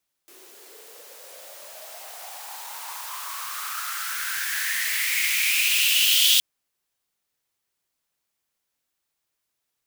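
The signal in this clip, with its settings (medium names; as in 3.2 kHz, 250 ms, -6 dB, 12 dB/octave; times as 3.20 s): swept filtered noise white, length 6.12 s highpass, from 360 Hz, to 3.3 kHz, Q 6.6, exponential, gain ramp +29 dB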